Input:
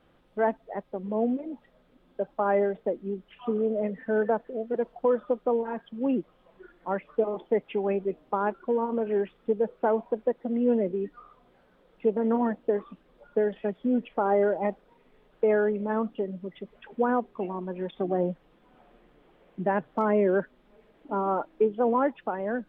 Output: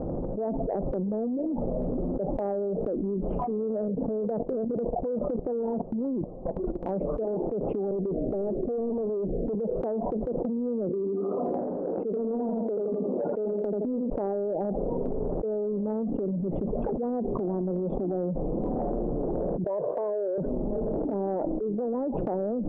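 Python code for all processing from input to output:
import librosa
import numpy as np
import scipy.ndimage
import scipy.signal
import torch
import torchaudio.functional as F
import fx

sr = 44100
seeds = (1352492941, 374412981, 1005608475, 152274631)

y = fx.chain(x, sr, fx.lowpass(hz=1200.0, slope=24),
    fx.level_steps(step_db=20), at=(3.88, 6.89))
y = fx.chain(y, sr, fx.cheby1_lowpass(hz=690.0, order=5),
    fx.overload_stage(gain_db=34.5), at=(7.91, 9.55))
y = fx.chain(y, sr, fx.highpass(hz=210.0, slope=24),
    fx.echo_feedback(ms=82, feedback_pct=31, wet_db=-6.5), at=(10.89, 14.1))
y = fx.chain(y, sr, fx.highpass(hz=620.0, slope=12),
    fx.comb(ms=1.9, depth=0.77), at=(19.64, 20.38))
y = scipy.signal.sosfilt(scipy.signal.cheby2(4, 50, 1700.0, 'lowpass', fs=sr, output='sos'), y)
y = fx.transient(y, sr, attack_db=-9, sustain_db=7)
y = fx.env_flatten(y, sr, amount_pct=100)
y = y * librosa.db_to_amplitude(-6.5)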